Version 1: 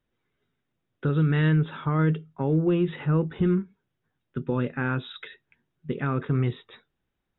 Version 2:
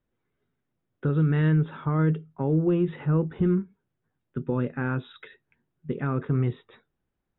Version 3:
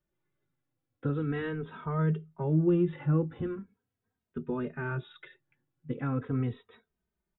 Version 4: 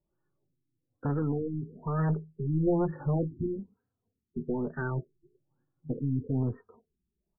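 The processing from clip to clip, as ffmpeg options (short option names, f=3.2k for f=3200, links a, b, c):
-af "lowpass=f=1.4k:p=1"
-filter_complex "[0:a]asplit=2[a][b];[b]adelay=2.9,afreqshift=-0.4[c];[a][c]amix=inputs=2:normalize=1,volume=-1.5dB"
-af "aeval=exprs='0.158*(cos(1*acos(clip(val(0)/0.158,-1,1)))-cos(1*PI/2))+0.0501*(cos(4*acos(clip(val(0)/0.158,-1,1)))-cos(4*PI/2))+0.02*(cos(5*acos(clip(val(0)/0.158,-1,1)))-cos(5*PI/2))+0.0398*(cos(6*acos(clip(val(0)/0.158,-1,1)))-cos(6*PI/2))':c=same,afftfilt=real='re*lt(b*sr/1024,380*pow(1900/380,0.5+0.5*sin(2*PI*1.1*pts/sr)))':imag='im*lt(b*sr/1024,380*pow(1900/380,0.5+0.5*sin(2*PI*1.1*pts/sr)))':win_size=1024:overlap=0.75,volume=-1.5dB"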